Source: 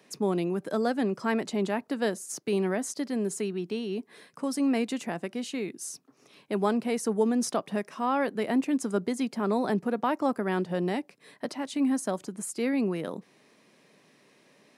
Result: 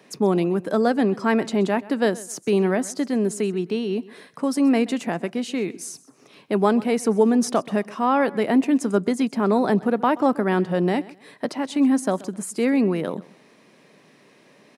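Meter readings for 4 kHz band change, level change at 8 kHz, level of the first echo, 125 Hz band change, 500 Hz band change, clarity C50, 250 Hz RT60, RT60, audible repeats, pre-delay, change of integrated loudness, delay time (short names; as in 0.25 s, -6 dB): +5.0 dB, +3.5 dB, -20.0 dB, +7.5 dB, +7.5 dB, none, none, none, 2, none, +7.5 dB, 0.129 s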